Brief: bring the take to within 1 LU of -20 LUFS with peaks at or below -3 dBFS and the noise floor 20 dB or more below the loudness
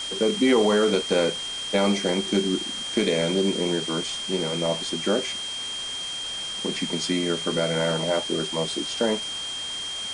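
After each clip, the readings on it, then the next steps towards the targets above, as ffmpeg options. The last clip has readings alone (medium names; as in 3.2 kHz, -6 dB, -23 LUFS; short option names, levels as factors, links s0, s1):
steady tone 3.2 kHz; tone level -30 dBFS; noise floor -32 dBFS; noise floor target -45 dBFS; loudness -24.5 LUFS; peak level -9.5 dBFS; loudness target -20.0 LUFS
-> -af "bandreject=f=3200:w=30"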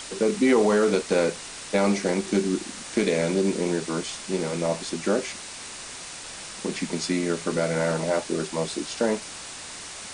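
steady tone not found; noise floor -39 dBFS; noise floor target -46 dBFS
-> -af "afftdn=nr=7:nf=-39"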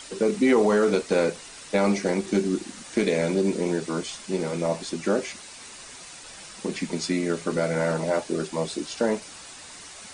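noise floor -44 dBFS; noise floor target -46 dBFS
-> -af "afftdn=nr=6:nf=-44"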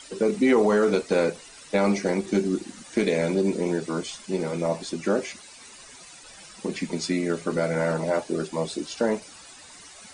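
noise floor -47 dBFS; loudness -25.5 LUFS; peak level -10.0 dBFS; loudness target -20.0 LUFS
-> -af "volume=1.88"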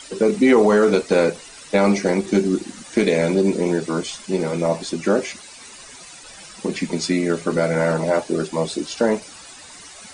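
loudness -20.0 LUFS; peak level -4.5 dBFS; noise floor -41 dBFS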